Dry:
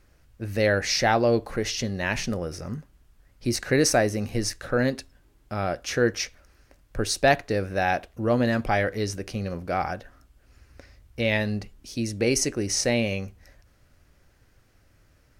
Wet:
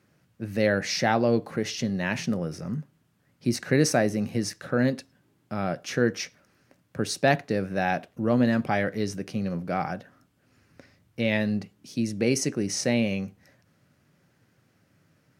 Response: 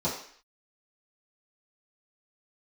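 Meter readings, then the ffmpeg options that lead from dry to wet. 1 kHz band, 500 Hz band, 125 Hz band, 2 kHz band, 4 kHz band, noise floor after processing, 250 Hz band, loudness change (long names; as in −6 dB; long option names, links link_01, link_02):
−2.5 dB, −2.0 dB, −0.5 dB, −2.5 dB, −4.0 dB, −67 dBFS, +2.0 dB, −1.5 dB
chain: -filter_complex "[0:a]highpass=frequency=140:width=0.5412,highpass=frequency=140:width=1.3066,bass=frequency=250:gain=9,treble=frequency=4000:gain=-2,asplit=2[link_01][link_02];[1:a]atrim=start_sample=2205,afade=type=out:start_time=0.17:duration=0.01,atrim=end_sample=7938[link_03];[link_02][link_03]afir=irnorm=-1:irlink=0,volume=-31.5dB[link_04];[link_01][link_04]amix=inputs=2:normalize=0,volume=-2.5dB"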